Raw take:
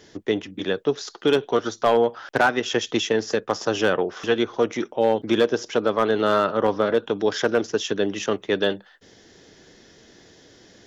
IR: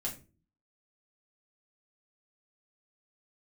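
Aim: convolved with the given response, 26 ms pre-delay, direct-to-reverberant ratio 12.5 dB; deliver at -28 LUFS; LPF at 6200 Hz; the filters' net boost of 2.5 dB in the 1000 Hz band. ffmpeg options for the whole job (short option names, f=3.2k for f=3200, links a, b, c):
-filter_complex "[0:a]lowpass=6.2k,equalizer=f=1k:t=o:g=3.5,asplit=2[a][b];[1:a]atrim=start_sample=2205,adelay=26[c];[b][c]afir=irnorm=-1:irlink=0,volume=-13.5dB[d];[a][d]amix=inputs=2:normalize=0,volume=-6dB"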